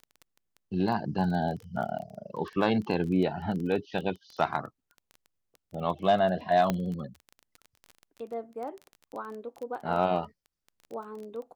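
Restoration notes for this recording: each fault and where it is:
surface crackle 17 per second −35 dBFS
0:06.70: click −13 dBFS

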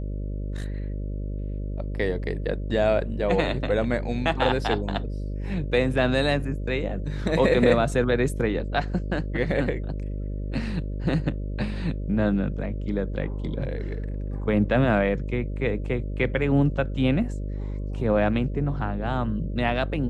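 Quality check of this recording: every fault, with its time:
mains buzz 50 Hz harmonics 12 −30 dBFS

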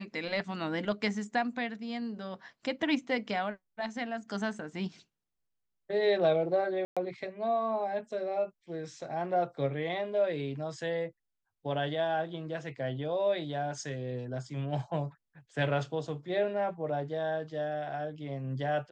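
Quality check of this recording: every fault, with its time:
0:06.85–0:06.97: drop-out 116 ms

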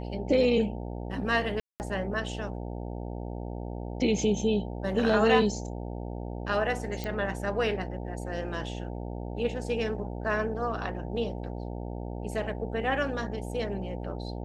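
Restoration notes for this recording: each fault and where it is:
mains buzz 60 Hz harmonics 15 −36 dBFS
0:01.60–0:01.80: drop-out 199 ms
0:07.04: click −20 dBFS

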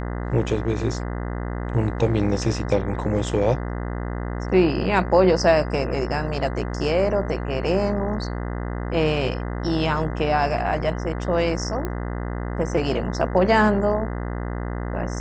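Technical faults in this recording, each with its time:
mains buzz 60 Hz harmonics 34 −28 dBFS
0:11.85: click −14 dBFS

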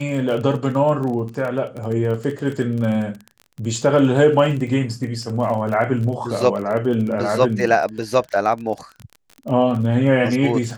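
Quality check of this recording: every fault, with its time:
surface crackle 31 per second −27 dBFS

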